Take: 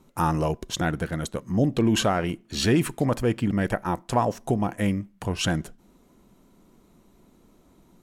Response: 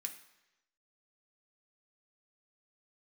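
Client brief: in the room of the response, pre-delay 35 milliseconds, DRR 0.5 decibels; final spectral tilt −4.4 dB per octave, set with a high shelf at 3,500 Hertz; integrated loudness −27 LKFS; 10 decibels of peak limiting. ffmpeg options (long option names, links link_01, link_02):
-filter_complex "[0:a]highshelf=frequency=3500:gain=6,alimiter=limit=-20dB:level=0:latency=1,asplit=2[link_01][link_02];[1:a]atrim=start_sample=2205,adelay=35[link_03];[link_02][link_03]afir=irnorm=-1:irlink=0,volume=2.5dB[link_04];[link_01][link_04]amix=inputs=2:normalize=0,volume=1.5dB"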